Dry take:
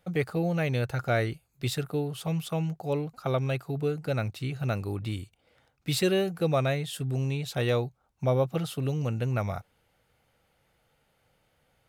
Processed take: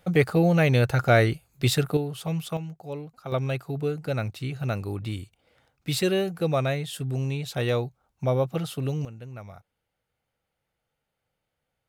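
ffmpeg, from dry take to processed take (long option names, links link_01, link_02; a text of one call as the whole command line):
ffmpeg -i in.wav -af "asetnsamples=nb_out_samples=441:pad=0,asendcmd='1.97 volume volume 1dB;2.57 volume volume -6dB;3.32 volume volume 1dB;9.05 volume volume -12dB',volume=7.5dB" out.wav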